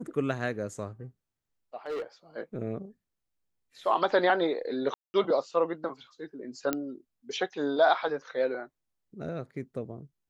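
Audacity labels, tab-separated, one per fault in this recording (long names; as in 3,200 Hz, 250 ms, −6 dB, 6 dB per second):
1.860000	2.020000	clipping −30.5 dBFS
4.940000	5.140000	drop-out 200 ms
6.730000	6.730000	click −13 dBFS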